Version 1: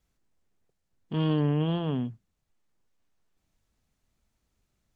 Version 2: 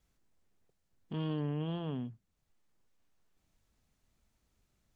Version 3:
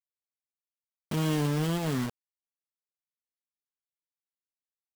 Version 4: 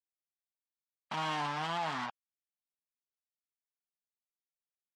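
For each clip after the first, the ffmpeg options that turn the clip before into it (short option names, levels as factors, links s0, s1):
-af "acompressor=threshold=0.00316:ratio=1.5"
-af "acrusher=bits=6:mix=0:aa=0.000001,volume=2.37"
-af "afftfilt=real='re*gte(hypot(re,im),0.00398)':imag='im*gte(hypot(re,im),0.00398)':win_size=1024:overlap=0.75,highpass=190,lowpass=4200,lowshelf=f=600:t=q:w=3:g=-11"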